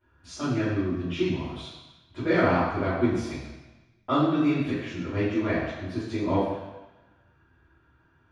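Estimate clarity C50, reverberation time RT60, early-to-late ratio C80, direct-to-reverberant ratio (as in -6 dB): -0.5 dB, 1.1 s, 2.5 dB, -14.5 dB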